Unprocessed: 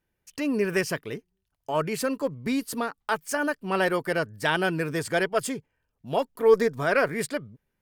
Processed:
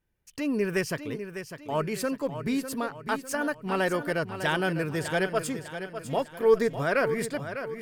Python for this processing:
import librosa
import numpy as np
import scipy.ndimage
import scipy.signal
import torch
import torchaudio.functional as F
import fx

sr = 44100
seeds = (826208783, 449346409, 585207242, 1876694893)

y = fx.low_shelf(x, sr, hz=130.0, db=7.5)
y = fx.echo_feedback(y, sr, ms=601, feedback_pct=43, wet_db=-10)
y = y * 10.0 ** (-3.0 / 20.0)